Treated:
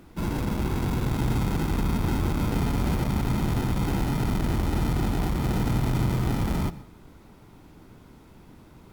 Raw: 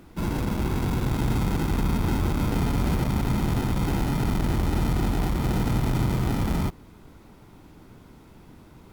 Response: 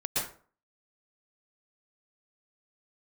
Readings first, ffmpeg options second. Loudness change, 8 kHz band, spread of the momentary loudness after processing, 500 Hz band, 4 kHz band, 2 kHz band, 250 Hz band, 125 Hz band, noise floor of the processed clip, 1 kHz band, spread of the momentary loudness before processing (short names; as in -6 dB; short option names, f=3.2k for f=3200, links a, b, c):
-1.0 dB, -1.0 dB, 3 LU, -1.0 dB, -1.0 dB, -1.0 dB, -1.0 dB, -0.5 dB, -51 dBFS, -1.0 dB, 2 LU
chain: -filter_complex "[0:a]asplit=2[a][b];[1:a]atrim=start_sample=2205[c];[b][c]afir=irnorm=-1:irlink=0,volume=-23.5dB[d];[a][d]amix=inputs=2:normalize=0,volume=-1.5dB"